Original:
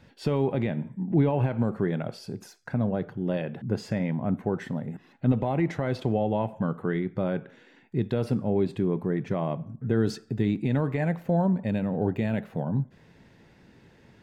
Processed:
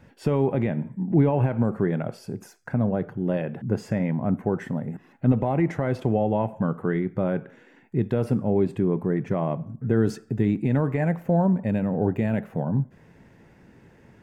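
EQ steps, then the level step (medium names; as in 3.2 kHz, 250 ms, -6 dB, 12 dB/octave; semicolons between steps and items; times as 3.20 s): peaking EQ 4 kHz -10.5 dB 0.89 oct; +3.0 dB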